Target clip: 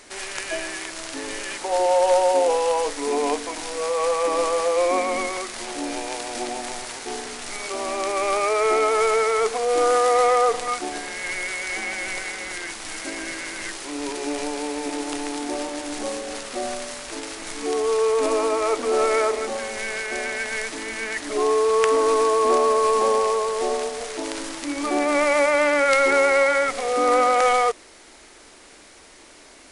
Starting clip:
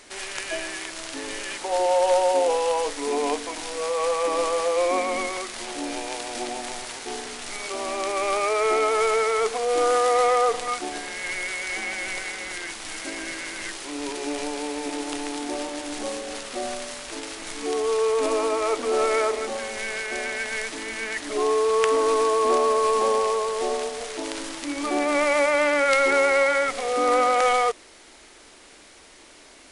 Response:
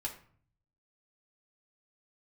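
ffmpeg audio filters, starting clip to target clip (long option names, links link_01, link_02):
-af "equalizer=frequency=3200:width_type=o:width=0.77:gain=-2.5,volume=2dB"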